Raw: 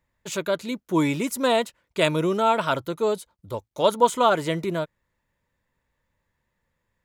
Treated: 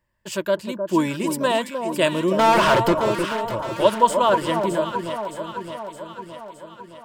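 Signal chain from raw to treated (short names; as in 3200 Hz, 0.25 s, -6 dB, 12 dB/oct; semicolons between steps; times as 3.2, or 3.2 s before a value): ripple EQ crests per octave 1.3, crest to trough 8 dB; 2.39–2.97 overdrive pedal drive 35 dB, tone 2200 Hz, clips at -10 dBFS; echo with dull and thin repeats by turns 0.308 s, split 1100 Hz, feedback 76%, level -6 dB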